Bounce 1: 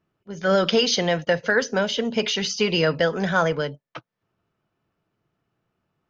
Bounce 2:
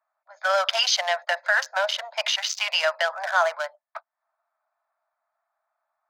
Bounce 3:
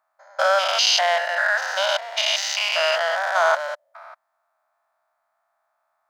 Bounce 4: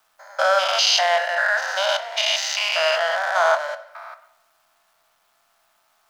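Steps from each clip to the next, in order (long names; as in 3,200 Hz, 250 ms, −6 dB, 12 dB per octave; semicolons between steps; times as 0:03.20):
adaptive Wiener filter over 15 samples; Butterworth high-pass 610 Hz 96 dB per octave; in parallel at +1 dB: brickwall limiter −18 dBFS, peak gain reduction 8.5 dB; on the sum: level −2 dB
spectrum averaged block by block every 200 ms; level +8 dB
bit-depth reduction 12 bits, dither none; convolution reverb RT60 0.80 s, pre-delay 6 ms, DRR 10.5 dB; one half of a high-frequency compander encoder only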